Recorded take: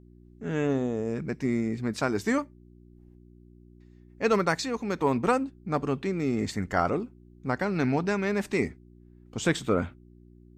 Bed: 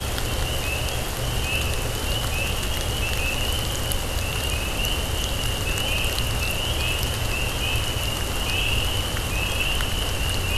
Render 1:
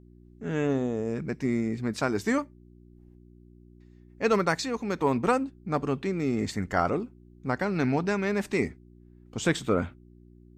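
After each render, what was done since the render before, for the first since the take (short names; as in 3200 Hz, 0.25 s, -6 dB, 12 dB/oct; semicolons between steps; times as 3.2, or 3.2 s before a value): nothing audible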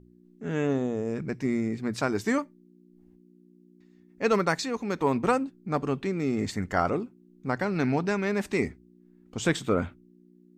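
de-hum 60 Hz, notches 2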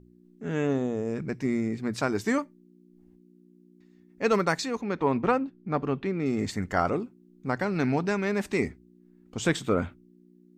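4.81–6.26 LPF 3500 Hz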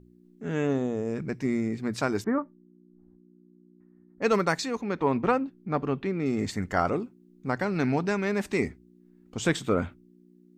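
2.24–4.22 Chebyshev low-pass 1400 Hz, order 3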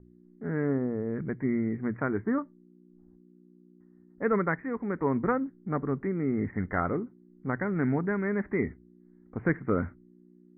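steep low-pass 2100 Hz 96 dB/oct; dynamic EQ 750 Hz, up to -7 dB, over -40 dBFS, Q 1.2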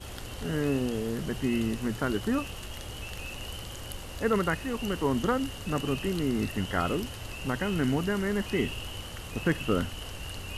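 add bed -14.5 dB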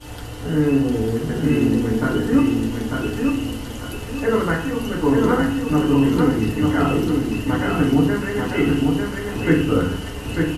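feedback echo 0.897 s, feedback 33%, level -3.5 dB; FDN reverb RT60 0.6 s, low-frequency decay 1.45×, high-frequency decay 0.35×, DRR -4.5 dB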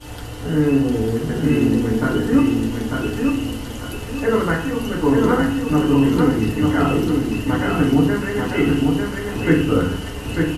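gain +1 dB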